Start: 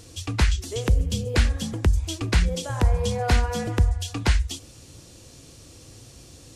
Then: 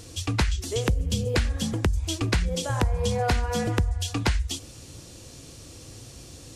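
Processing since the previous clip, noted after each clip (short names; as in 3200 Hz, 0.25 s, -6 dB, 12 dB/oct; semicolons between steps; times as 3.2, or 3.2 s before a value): compressor 10:1, threshold -22 dBFS, peak gain reduction 9.5 dB; gain +2.5 dB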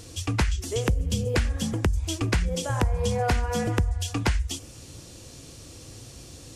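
dynamic EQ 4000 Hz, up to -5 dB, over -50 dBFS, Q 2.9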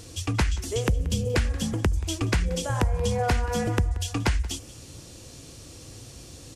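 echo 0.18 s -20 dB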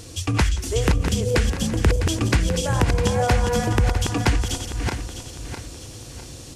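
regenerating reverse delay 0.327 s, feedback 59%, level -6 dB; gain +4 dB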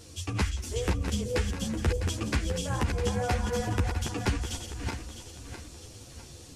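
ensemble effect; gain -5.5 dB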